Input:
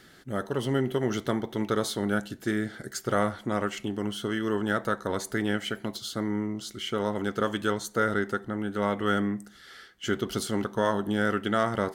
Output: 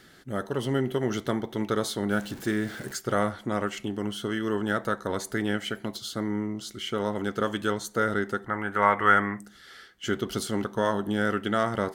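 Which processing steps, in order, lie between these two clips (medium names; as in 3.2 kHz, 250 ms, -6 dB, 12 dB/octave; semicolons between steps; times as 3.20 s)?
2.10–2.96 s: jump at every zero crossing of -39.5 dBFS; 8.46–9.40 s: graphic EQ 250/1000/2000/4000 Hz -6/+10/+11/-9 dB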